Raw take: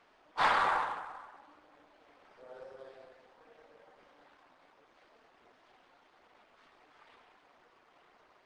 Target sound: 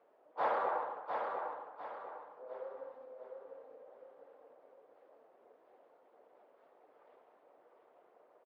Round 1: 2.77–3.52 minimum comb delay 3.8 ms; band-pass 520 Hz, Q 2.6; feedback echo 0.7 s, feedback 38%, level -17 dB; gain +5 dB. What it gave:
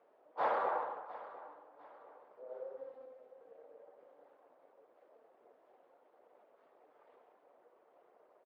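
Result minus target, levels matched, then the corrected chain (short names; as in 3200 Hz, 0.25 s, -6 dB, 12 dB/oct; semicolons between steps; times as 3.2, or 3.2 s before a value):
echo-to-direct -12 dB
2.77–3.52 minimum comb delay 3.8 ms; band-pass 520 Hz, Q 2.6; feedback echo 0.7 s, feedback 38%, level -5 dB; gain +5 dB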